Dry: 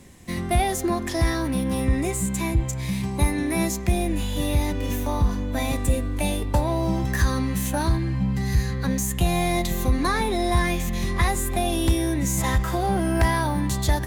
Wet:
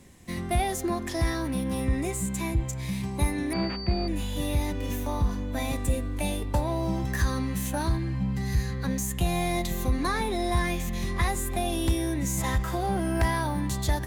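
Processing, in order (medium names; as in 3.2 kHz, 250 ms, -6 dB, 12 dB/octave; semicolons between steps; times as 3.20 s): 3.53–4.08 s: class-D stage that switches slowly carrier 4.6 kHz; trim -4.5 dB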